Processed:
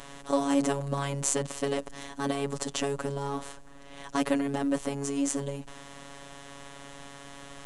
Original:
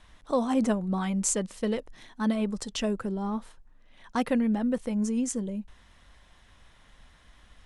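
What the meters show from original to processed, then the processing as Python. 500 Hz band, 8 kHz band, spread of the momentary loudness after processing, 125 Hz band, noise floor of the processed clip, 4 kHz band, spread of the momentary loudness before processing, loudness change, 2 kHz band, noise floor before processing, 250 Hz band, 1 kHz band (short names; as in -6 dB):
+0.5 dB, +0.5 dB, 18 LU, n/a, -47 dBFS, +2.0 dB, 8 LU, -1.5 dB, +2.0 dB, -58 dBFS, -3.5 dB, +1.0 dB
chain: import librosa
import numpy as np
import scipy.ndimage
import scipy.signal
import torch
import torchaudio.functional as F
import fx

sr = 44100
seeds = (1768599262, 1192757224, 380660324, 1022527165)

y = fx.bin_compress(x, sr, power=0.6)
y = fx.robotise(y, sr, hz=140.0)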